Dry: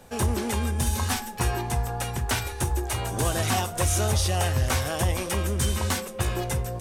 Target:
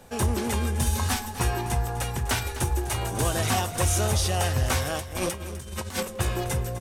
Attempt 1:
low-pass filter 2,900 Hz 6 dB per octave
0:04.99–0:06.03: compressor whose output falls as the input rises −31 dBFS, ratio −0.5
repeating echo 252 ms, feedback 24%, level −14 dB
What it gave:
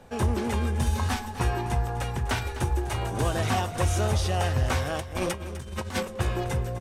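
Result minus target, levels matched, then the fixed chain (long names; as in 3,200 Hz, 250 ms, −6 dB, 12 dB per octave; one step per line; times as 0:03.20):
4,000 Hz band −2.5 dB
0:04.99–0:06.03: compressor whose output falls as the input rises −31 dBFS, ratio −0.5
repeating echo 252 ms, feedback 24%, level −14 dB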